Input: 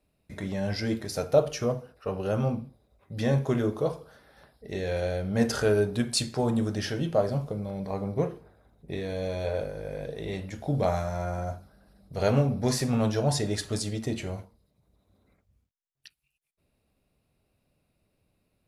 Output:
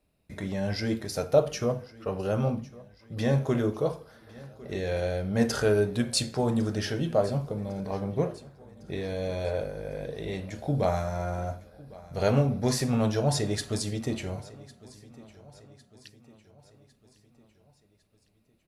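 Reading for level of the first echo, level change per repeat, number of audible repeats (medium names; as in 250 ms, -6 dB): -21.0 dB, -6.0 dB, 3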